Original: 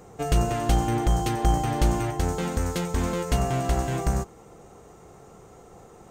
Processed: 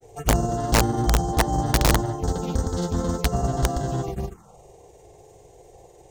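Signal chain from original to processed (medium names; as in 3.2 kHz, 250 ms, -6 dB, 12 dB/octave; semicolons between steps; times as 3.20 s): granulator 100 ms, grains 20 per s, pitch spread up and down by 0 st; touch-sensitive phaser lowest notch 180 Hz, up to 2.4 kHz, full sweep at -24.5 dBFS; integer overflow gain 14 dB; trim +3 dB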